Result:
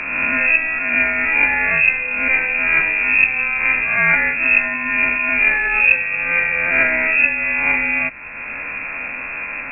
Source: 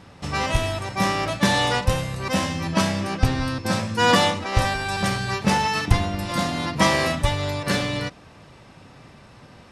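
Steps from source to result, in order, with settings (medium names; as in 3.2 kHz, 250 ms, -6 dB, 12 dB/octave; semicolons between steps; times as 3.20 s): reverse spectral sustain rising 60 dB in 0.62 s; dynamic bell 1.5 kHz, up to -7 dB, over -37 dBFS, Q 1.8; frequency inversion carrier 2.6 kHz; three bands compressed up and down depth 70%; trim +3.5 dB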